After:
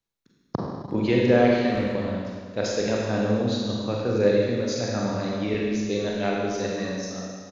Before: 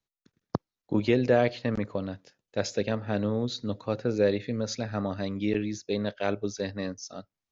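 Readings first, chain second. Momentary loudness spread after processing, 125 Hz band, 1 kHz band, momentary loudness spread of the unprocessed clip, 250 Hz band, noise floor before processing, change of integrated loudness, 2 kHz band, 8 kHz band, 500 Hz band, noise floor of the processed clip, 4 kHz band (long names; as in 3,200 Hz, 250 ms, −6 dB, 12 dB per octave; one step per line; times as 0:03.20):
12 LU, +4.0 dB, +5.5 dB, 12 LU, +5.0 dB, below −85 dBFS, +4.5 dB, +5.0 dB, can't be measured, +5.0 dB, −66 dBFS, +5.0 dB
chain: far-end echo of a speakerphone 360 ms, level −17 dB
four-comb reverb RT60 1.8 s, combs from 33 ms, DRR −3 dB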